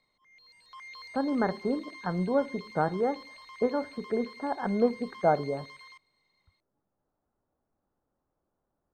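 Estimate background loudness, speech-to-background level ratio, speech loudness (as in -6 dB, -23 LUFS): -46.5 LUFS, 16.5 dB, -30.0 LUFS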